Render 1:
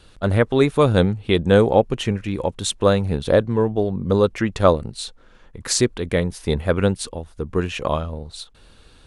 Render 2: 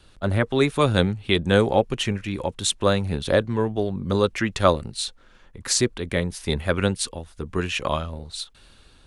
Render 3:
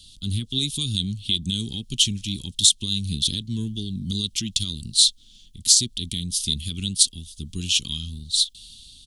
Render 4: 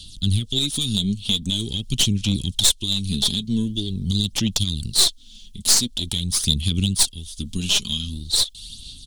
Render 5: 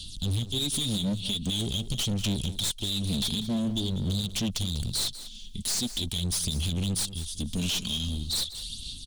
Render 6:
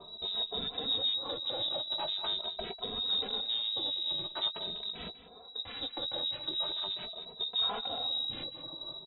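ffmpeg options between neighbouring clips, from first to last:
-filter_complex "[0:a]bandreject=f=470:w=12,acrossover=split=420|1400[s0][s1][s2];[s2]dynaudnorm=f=160:g=7:m=2.24[s3];[s0][s1][s3]amix=inputs=3:normalize=0,volume=0.668"
-af "equalizer=f=590:t=o:w=0.61:g=-12,alimiter=limit=0.168:level=0:latency=1:release=154,firequalizer=gain_entry='entry(230,0);entry(570,-29);entry(1700,-28);entry(3200,13)':delay=0.05:min_phase=1"
-filter_complex "[0:a]asplit=2[s0][s1];[s1]acompressor=threshold=0.0398:ratio=6,volume=1.33[s2];[s0][s2]amix=inputs=2:normalize=0,aeval=exprs='(tanh(3.16*val(0)+0.5)-tanh(0.5))/3.16':c=same,aphaser=in_gain=1:out_gain=1:delay=4.9:decay=0.47:speed=0.45:type=sinusoidal"
-af "alimiter=limit=0.188:level=0:latency=1:release=90,asoftclip=type=hard:threshold=0.0562,aecho=1:1:195:0.2"
-filter_complex "[0:a]lowpass=f=3300:t=q:w=0.5098,lowpass=f=3300:t=q:w=0.6013,lowpass=f=3300:t=q:w=0.9,lowpass=f=3300:t=q:w=2.563,afreqshift=-3900,asplit=2[s0][s1];[s1]adelay=18,volume=0.237[s2];[s0][s2]amix=inputs=2:normalize=0,asplit=2[s3][s4];[s4]adelay=2.7,afreqshift=0.43[s5];[s3][s5]amix=inputs=2:normalize=1,volume=0.891"

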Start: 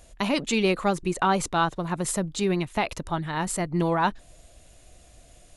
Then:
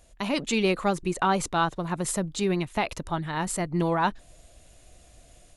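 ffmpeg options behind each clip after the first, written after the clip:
-af "dynaudnorm=f=190:g=3:m=1.68,volume=0.531"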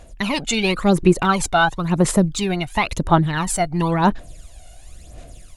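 -af "aphaser=in_gain=1:out_gain=1:delay=1.4:decay=0.67:speed=0.96:type=sinusoidal,volume=1.88"

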